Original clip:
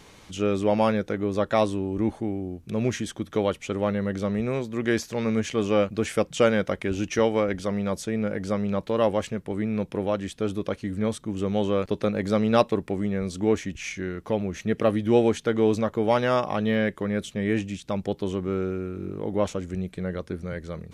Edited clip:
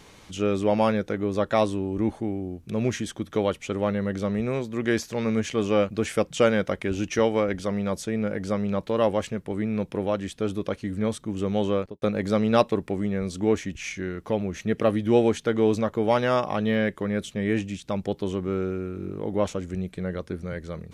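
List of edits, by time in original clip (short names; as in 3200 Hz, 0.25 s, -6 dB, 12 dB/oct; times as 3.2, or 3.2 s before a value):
11.72–12.02 studio fade out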